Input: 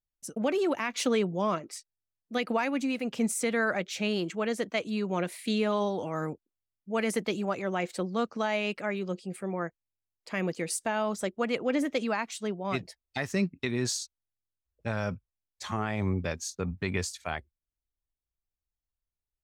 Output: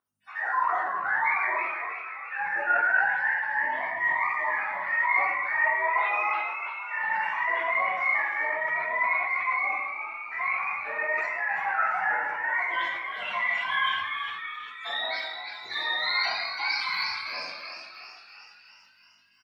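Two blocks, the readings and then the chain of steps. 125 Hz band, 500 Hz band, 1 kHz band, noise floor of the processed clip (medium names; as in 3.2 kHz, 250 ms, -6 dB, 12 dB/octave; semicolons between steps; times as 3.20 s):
under -25 dB, -8.5 dB, +9.0 dB, -54 dBFS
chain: spectrum inverted on a logarithmic axis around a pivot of 630 Hz; treble shelf 2.2 kHz +11.5 dB; peak limiter -24.5 dBFS, peak gain reduction 10 dB; hum 50 Hz, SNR 19 dB; LFO high-pass sine 6.5 Hz 800–1800 Hz; on a send: frequency-shifting echo 339 ms, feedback 59%, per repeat +84 Hz, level -8 dB; on the sum: simulated room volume 480 m³, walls mixed, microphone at 3.4 m; decay stretcher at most 37 dB/s; trim -5.5 dB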